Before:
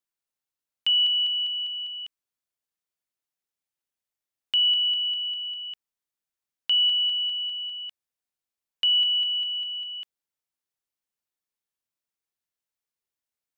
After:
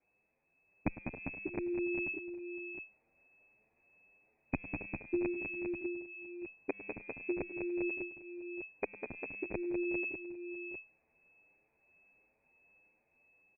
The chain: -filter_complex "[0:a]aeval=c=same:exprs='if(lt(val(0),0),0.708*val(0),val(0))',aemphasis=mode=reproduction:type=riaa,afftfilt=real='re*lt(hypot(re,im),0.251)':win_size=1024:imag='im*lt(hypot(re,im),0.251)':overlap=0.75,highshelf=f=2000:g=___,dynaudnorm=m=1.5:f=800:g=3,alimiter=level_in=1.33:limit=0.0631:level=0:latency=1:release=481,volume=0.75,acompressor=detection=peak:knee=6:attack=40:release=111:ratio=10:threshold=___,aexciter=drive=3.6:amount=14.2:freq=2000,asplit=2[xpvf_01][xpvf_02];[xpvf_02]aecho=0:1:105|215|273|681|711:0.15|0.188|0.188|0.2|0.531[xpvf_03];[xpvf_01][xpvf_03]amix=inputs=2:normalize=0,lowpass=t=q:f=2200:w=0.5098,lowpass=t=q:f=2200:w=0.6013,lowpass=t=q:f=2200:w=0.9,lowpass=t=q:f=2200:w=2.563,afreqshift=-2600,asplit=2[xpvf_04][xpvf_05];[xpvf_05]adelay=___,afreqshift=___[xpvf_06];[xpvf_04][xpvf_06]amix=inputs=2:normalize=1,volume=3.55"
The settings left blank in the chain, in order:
4, 0.00501, 8.1, 1.5